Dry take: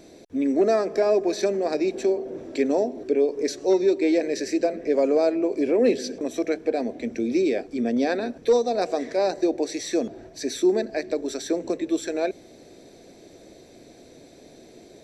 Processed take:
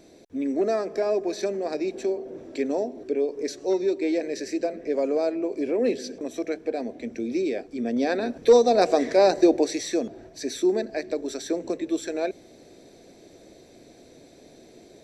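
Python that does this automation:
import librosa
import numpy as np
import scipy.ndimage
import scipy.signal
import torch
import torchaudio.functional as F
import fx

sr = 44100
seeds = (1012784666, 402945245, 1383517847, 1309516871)

y = fx.gain(x, sr, db=fx.line((7.77, -4.0), (8.65, 5.0), (9.52, 5.0), (10.01, -2.0)))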